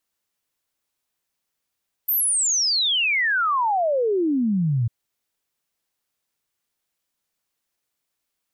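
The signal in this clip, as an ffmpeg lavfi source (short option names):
-f lavfi -i "aevalsrc='0.126*clip(min(t,2.8-t)/0.01,0,1)*sin(2*PI*14000*2.8/log(110/14000)*(exp(log(110/14000)*t/2.8)-1))':d=2.8:s=44100"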